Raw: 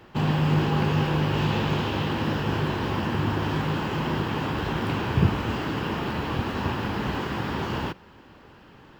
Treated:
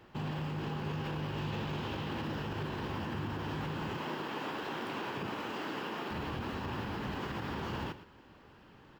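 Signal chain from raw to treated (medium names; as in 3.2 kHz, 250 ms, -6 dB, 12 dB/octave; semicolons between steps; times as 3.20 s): 3.97–6.11 s: high-pass 290 Hz 12 dB/octave; peak limiter -21.5 dBFS, peak gain reduction 10 dB; delay 114 ms -14 dB; trim -7.5 dB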